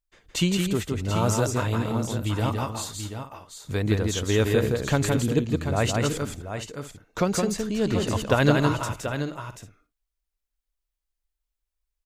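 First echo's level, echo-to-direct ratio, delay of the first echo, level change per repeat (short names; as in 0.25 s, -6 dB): -3.5 dB, -2.5 dB, 0.166 s, no steady repeat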